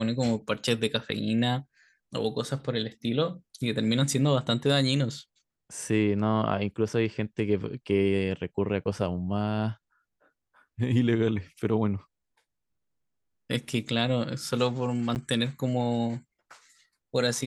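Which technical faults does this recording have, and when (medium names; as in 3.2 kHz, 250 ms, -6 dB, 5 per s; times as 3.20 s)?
15.15–15.16 s: dropout 9.1 ms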